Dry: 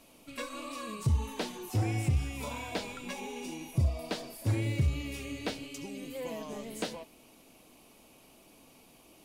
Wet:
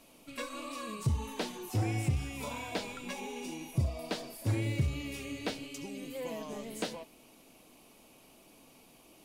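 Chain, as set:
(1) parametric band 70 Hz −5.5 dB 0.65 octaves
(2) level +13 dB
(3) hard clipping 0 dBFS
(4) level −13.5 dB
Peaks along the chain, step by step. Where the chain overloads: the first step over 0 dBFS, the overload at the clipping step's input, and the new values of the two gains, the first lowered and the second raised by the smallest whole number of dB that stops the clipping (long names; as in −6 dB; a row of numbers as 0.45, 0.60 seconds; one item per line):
−18.5, −5.5, −5.5, −19.0 dBFS
no step passes full scale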